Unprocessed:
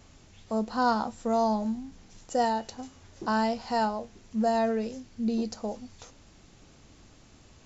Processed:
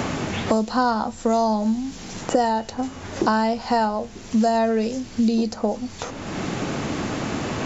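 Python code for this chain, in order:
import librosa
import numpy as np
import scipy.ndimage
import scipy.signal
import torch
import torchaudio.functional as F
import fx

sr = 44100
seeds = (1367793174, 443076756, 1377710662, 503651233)

y = fx.band_squash(x, sr, depth_pct=100)
y = y * librosa.db_to_amplitude(7.0)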